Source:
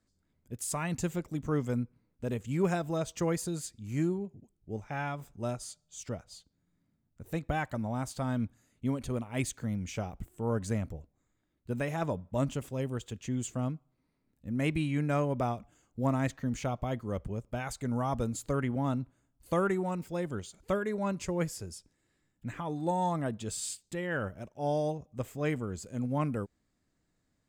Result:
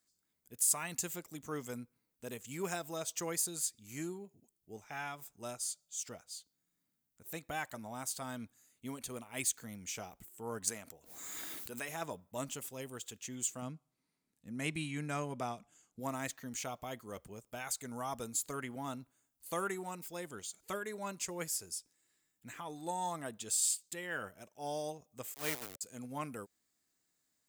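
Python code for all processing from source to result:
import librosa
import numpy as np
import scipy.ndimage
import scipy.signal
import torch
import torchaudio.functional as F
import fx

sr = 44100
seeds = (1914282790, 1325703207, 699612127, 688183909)

y = fx.chain(x, sr, fx.low_shelf(hz=220.0, db=-11.5),
    fx.pre_swell(db_per_s=27.0), at=(10.67, 11.89))
y = fx.chain(y, sr, fx.lowpass(hz=10000.0, slope=12),
    fx.peak_eq(hz=170.0, db=6.5, octaves=1.0), at=(13.62, 16.0))
y = fx.chain(y, sr, fx.sample_gate(floor_db=-33.0),
    fx.band_widen(depth_pct=70), at=(25.34, 25.81))
y = fx.riaa(y, sr, side='recording')
y = fx.notch(y, sr, hz=560.0, q=12.0)
y = F.gain(torch.from_numpy(y), -5.5).numpy()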